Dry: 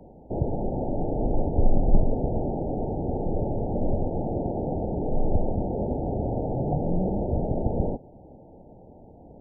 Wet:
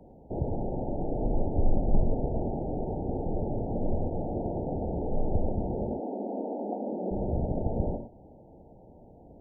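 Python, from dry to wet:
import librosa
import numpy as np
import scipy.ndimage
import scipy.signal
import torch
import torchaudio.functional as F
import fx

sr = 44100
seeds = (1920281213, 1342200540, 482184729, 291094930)

y = fx.steep_highpass(x, sr, hz=200.0, slope=96, at=(5.89, 7.1), fade=0.02)
y = fx.rev_gated(y, sr, seeds[0], gate_ms=130, shape='rising', drr_db=6.0)
y = y * librosa.db_to_amplitude(-4.5)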